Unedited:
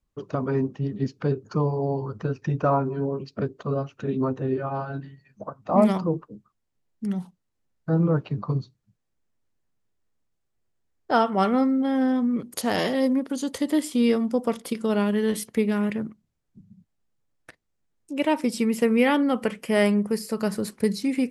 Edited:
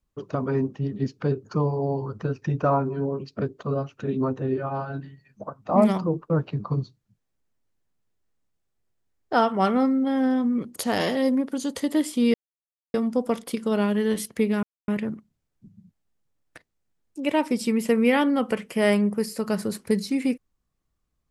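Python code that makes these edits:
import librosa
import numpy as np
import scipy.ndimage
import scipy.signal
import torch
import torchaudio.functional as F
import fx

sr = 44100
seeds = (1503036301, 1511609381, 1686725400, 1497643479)

y = fx.edit(x, sr, fx.cut(start_s=6.3, length_s=1.78),
    fx.insert_silence(at_s=14.12, length_s=0.6),
    fx.insert_silence(at_s=15.81, length_s=0.25), tone=tone)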